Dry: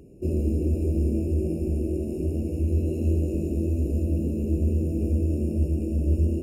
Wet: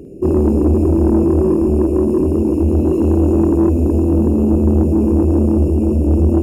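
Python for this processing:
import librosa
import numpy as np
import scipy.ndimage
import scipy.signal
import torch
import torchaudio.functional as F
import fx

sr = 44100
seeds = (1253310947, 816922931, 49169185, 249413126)

y = fx.peak_eq(x, sr, hz=340.0, db=9.0, octaves=1.8)
y = fx.echo_multitap(y, sr, ms=(51, 78, 259), db=(-8.5, -18.0, -9.5))
y = 10.0 ** (-14.0 / 20.0) * np.tanh(y / 10.0 ** (-14.0 / 20.0))
y = y * 10.0 ** (7.5 / 20.0)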